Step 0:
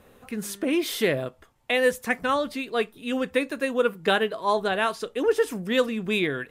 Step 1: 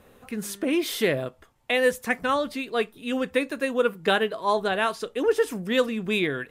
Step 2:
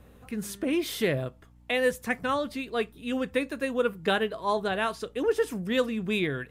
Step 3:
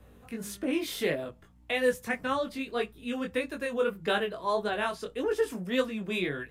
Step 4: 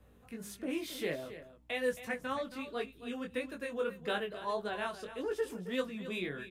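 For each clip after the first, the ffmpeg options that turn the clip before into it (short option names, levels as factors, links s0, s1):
-af anull
-af "equalizer=f=100:w=0.92:g=9,aeval=exprs='val(0)+0.00282*(sin(2*PI*60*n/s)+sin(2*PI*2*60*n/s)/2+sin(2*PI*3*60*n/s)/3+sin(2*PI*4*60*n/s)/4+sin(2*PI*5*60*n/s)/5)':c=same,volume=0.631"
-filter_complex "[0:a]acrossover=split=210|1100[s0][s1][s2];[s0]asoftclip=type=tanh:threshold=0.01[s3];[s3][s1][s2]amix=inputs=3:normalize=0,flanger=delay=18.5:depth=3.8:speed=1.7,volume=1.12"
-af "aecho=1:1:271:0.224,volume=0.447"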